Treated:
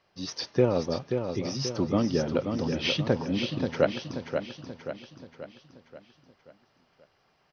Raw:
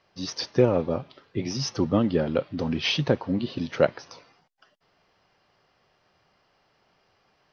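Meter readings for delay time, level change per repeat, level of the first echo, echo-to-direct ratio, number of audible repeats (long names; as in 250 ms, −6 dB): 532 ms, −6.0 dB, −6.5 dB, −5.5 dB, 5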